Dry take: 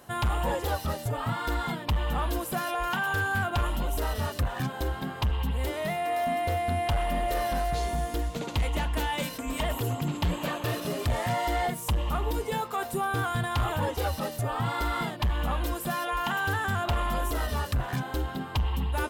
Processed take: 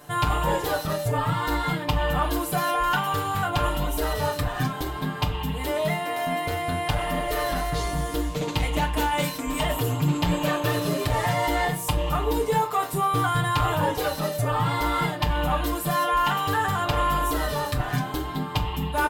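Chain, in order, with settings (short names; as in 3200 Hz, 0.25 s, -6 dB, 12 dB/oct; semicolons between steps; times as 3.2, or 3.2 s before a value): comb 6.7 ms, depth 86%; reverb RT60 0.30 s, pre-delay 13 ms, DRR 6.5 dB; gain +2 dB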